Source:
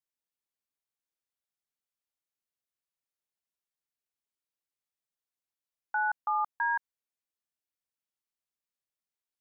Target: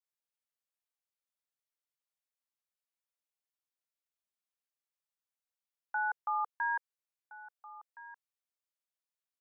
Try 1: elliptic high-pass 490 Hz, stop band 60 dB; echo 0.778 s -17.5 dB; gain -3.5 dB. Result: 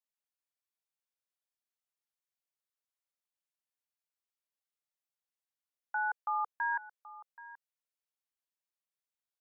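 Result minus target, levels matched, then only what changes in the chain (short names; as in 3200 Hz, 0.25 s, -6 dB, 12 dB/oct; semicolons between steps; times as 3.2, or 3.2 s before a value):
echo 0.59 s early
change: echo 1.368 s -17.5 dB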